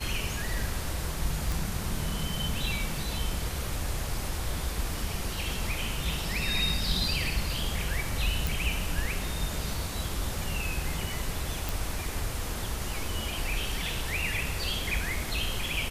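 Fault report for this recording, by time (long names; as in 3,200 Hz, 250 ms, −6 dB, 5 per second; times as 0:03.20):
0:01.52: click
0:08.47: click
0:11.69: click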